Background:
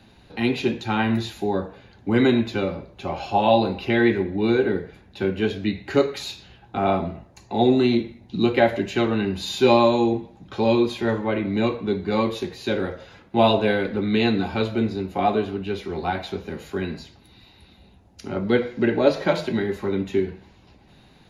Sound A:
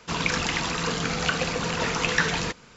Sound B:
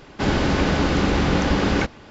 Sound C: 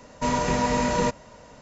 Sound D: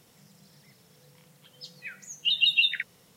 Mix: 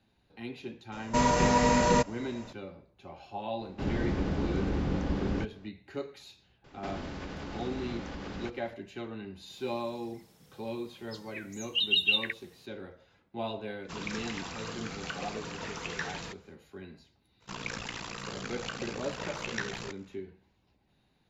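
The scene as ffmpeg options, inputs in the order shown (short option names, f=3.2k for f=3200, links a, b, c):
-filter_complex "[2:a]asplit=2[a][b];[1:a]asplit=2[c][d];[0:a]volume=-18.5dB[e];[a]tiltshelf=f=640:g=5.5[f];[b]acompressor=threshold=-25dB:ratio=6:attack=3.2:release=140:knee=1:detection=peak[g];[d]aeval=exprs='val(0)*sin(2*PI*29*n/s)':c=same[h];[3:a]atrim=end=1.61,asetpts=PTS-STARTPTS,volume=-0.5dB,afade=t=in:d=0.004:c=hsin,afade=t=out:st=1.606:d=0.004:c=hsin,adelay=920[i];[f]atrim=end=2.1,asetpts=PTS-STARTPTS,volume=-14.5dB,afade=t=in:d=0.004:c=hsin,afade=t=out:st=2.096:d=0.004:c=hsin,adelay=3590[j];[g]atrim=end=2.1,asetpts=PTS-STARTPTS,volume=-11.5dB,afade=t=in:d=0.004:c=hsin,afade=t=out:st=2.096:d=0.004:c=hsin,adelay=6640[k];[4:a]atrim=end=3.16,asetpts=PTS-STARTPTS,volume=-3.5dB,afade=t=in:d=0.004:c=hsin,afade=t=out:st=3.156:d=0.004:c=hsin,adelay=9500[l];[c]atrim=end=2.76,asetpts=PTS-STARTPTS,volume=-13.5dB,afade=t=in:d=0.1,afade=t=out:st=2.66:d=0.1,adelay=13810[m];[h]atrim=end=2.76,asetpts=PTS-STARTPTS,volume=-10dB,afade=t=in:d=0.02,afade=t=out:st=2.74:d=0.02,adelay=17400[n];[e][i][j][k][l][m][n]amix=inputs=7:normalize=0"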